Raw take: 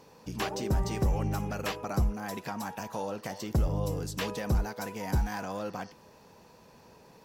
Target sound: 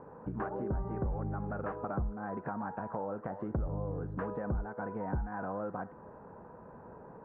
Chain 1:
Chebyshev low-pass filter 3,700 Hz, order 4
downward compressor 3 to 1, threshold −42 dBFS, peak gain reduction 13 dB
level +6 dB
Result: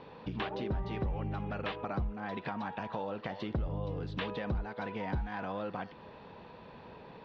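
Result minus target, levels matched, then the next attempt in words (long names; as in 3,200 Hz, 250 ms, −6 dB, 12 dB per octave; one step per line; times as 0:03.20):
2,000 Hz band +4.5 dB
Chebyshev low-pass filter 1,500 Hz, order 4
downward compressor 3 to 1, threshold −42 dBFS, peak gain reduction 13 dB
level +6 dB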